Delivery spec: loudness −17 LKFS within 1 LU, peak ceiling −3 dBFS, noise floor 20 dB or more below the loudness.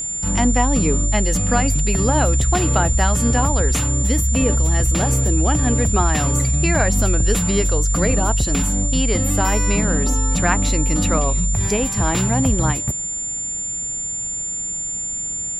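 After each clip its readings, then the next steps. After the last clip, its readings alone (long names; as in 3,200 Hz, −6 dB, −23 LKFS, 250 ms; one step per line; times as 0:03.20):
crackle rate 40 per second; interfering tone 7,200 Hz; level of the tone −23 dBFS; integrated loudness −18.5 LKFS; sample peak −3.5 dBFS; target loudness −17.0 LKFS
→ click removal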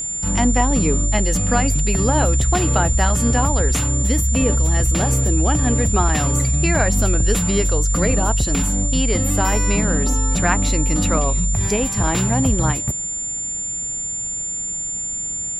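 crackle rate 0.26 per second; interfering tone 7,200 Hz; level of the tone −23 dBFS
→ notch filter 7,200 Hz, Q 30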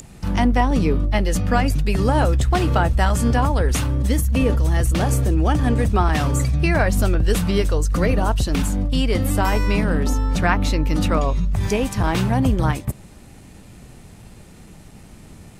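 interfering tone none found; integrated loudness −20.0 LKFS; sample peak −4.0 dBFS; target loudness −17.0 LKFS
→ level +3 dB
brickwall limiter −3 dBFS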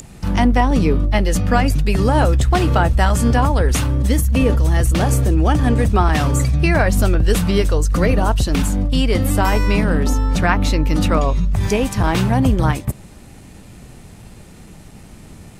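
integrated loudness −17.0 LKFS; sample peak −3.0 dBFS; background noise floor −41 dBFS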